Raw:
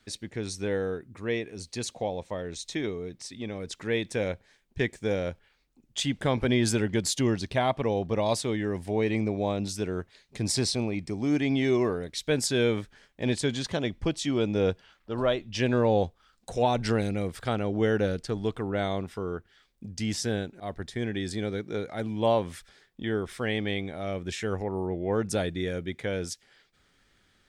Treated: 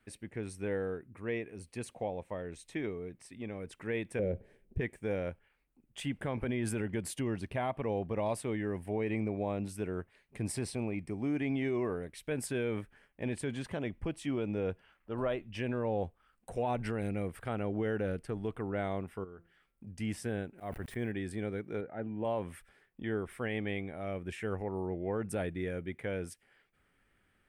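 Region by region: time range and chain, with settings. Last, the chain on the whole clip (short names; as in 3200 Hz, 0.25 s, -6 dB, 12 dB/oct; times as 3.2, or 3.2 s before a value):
4.19–4.81 resonant low shelf 690 Hz +14 dB, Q 1.5 + compressor 2.5:1, threshold -21 dBFS + notch 280 Hz, Q 5.7
19.24–19.87 compressor 12:1, threshold -39 dBFS + de-hum 170.2 Hz, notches 8
20.58–21.12 sample gate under -51 dBFS + sustainer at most 54 dB/s
21.81–22.25 Gaussian blur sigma 3.2 samples + notch comb 1100 Hz + mismatched tape noise reduction decoder only
whole clip: band shelf 5000 Hz -13.5 dB 1.3 oct; limiter -19 dBFS; gain -5.5 dB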